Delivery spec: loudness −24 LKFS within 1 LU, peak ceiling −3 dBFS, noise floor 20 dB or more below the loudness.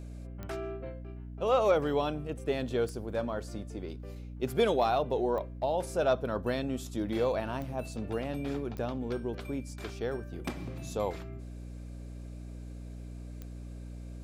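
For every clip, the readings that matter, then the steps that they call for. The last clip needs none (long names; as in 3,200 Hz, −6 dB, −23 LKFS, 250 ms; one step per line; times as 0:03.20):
number of clicks 6; mains hum 60 Hz; hum harmonics up to 300 Hz; level of the hum −40 dBFS; integrated loudness −32.5 LKFS; sample peak −15.5 dBFS; target loudness −24.0 LKFS
→ click removal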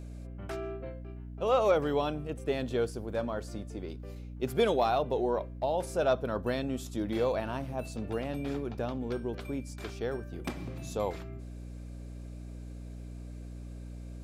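number of clicks 0; mains hum 60 Hz; hum harmonics up to 300 Hz; level of the hum −40 dBFS
→ hum removal 60 Hz, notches 5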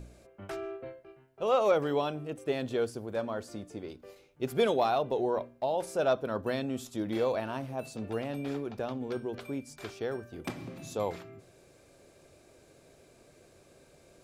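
mains hum none found; integrated loudness −32.5 LKFS; sample peak −16.0 dBFS; target loudness −24.0 LKFS
→ level +8.5 dB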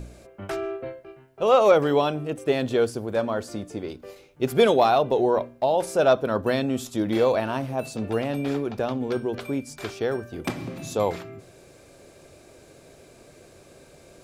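integrated loudness −24.5 LKFS; sample peak −7.5 dBFS; background noise floor −52 dBFS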